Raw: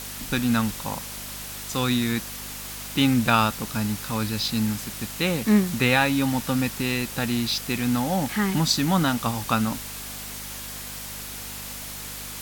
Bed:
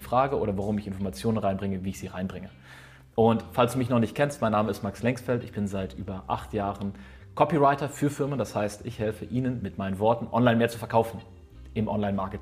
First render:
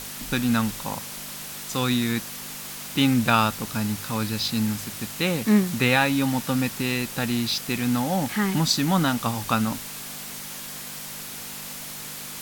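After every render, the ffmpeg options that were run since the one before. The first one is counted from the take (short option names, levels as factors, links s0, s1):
-af "bandreject=f=50:t=h:w=4,bandreject=f=100:t=h:w=4"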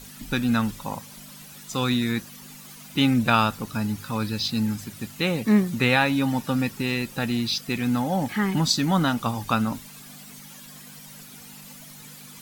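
-af "afftdn=nr=12:nf=-37"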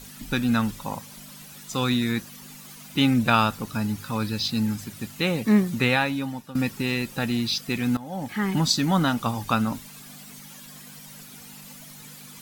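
-filter_complex "[0:a]asplit=3[s0][s1][s2];[s0]atrim=end=6.55,asetpts=PTS-STARTPTS,afade=t=out:st=5.78:d=0.77:silence=0.141254[s3];[s1]atrim=start=6.55:end=7.97,asetpts=PTS-STARTPTS,afade=t=in:d=0.004:c=hsin:silence=0.141254,afade=t=out:st=1.416:d=0.004:c=hsin:silence=0.133352[s4];[s2]atrim=start=7.97,asetpts=PTS-STARTPTS,afade=t=in:d=0.58:silence=0.133352[s5];[s3][s4][s5]concat=n=3:v=0:a=1"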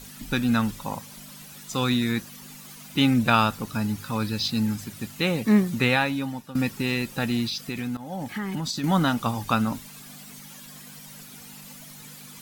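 -filter_complex "[0:a]asettb=1/sr,asplit=3[s0][s1][s2];[s0]atrim=end=7.454[s3];[s1]atrim=start=7.45:end=8.84,asetpts=PTS-STARTPTS,afade=t=in:d=0.004:c=qsin,afade=t=out:st=1.386:d=0.004:c=qsin,acompressor=threshold=0.0501:ratio=6:attack=3.2:release=140:knee=1:detection=peak[s4];[s2]atrim=start=8.836[s5];[s3][s4]acrossfade=d=0.004:c1=hsin:c2=qsin[s6];[s6][s5]acrossfade=d=0.004:c1=qsin:c2=hsin"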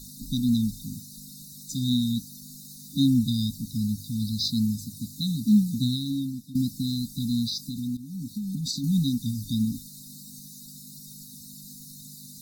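-af "afftfilt=real='re*(1-between(b*sr/4096,280,3600))':imag='im*(1-between(b*sr/4096,280,3600))':win_size=4096:overlap=0.75"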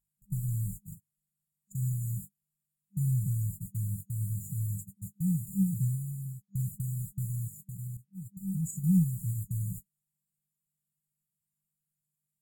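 -af "agate=range=0.00891:threshold=0.0224:ratio=16:detection=peak,afftfilt=real='re*(1-between(b*sr/4096,200,6800))':imag='im*(1-between(b*sr/4096,200,6800))':win_size=4096:overlap=0.75"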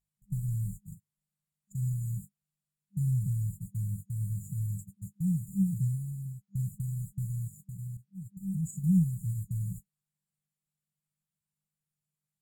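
-af "highshelf=f=9000:g=-11"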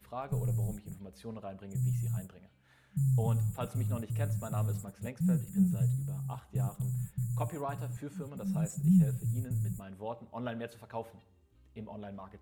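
-filter_complex "[1:a]volume=0.141[s0];[0:a][s0]amix=inputs=2:normalize=0"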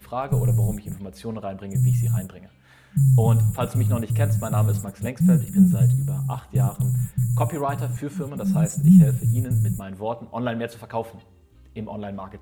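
-af "volume=3.98"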